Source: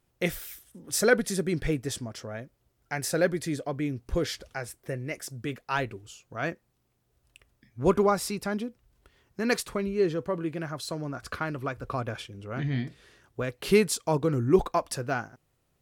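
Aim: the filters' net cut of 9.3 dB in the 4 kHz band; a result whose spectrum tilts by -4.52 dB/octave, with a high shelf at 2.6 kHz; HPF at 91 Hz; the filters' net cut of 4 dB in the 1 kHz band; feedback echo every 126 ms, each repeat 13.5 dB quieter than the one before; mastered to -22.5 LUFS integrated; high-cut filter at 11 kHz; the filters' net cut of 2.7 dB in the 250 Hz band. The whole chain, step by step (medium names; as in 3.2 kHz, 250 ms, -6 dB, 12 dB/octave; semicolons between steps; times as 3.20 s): high-pass 91 Hz; low-pass 11 kHz; peaking EQ 250 Hz -3.5 dB; peaking EQ 1 kHz -3.5 dB; treble shelf 2.6 kHz -8.5 dB; peaking EQ 4 kHz -4 dB; feedback delay 126 ms, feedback 21%, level -13.5 dB; trim +9.5 dB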